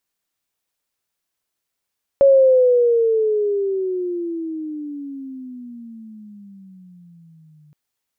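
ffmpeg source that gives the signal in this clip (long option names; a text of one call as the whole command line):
ffmpeg -f lavfi -i "aevalsrc='pow(10,(-7.5-39.5*t/5.52)/20)*sin(2*PI*557*5.52/(-23*log(2)/12)*(exp(-23*log(2)/12*t/5.52)-1))':duration=5.52:sample_rate=44100" out.wav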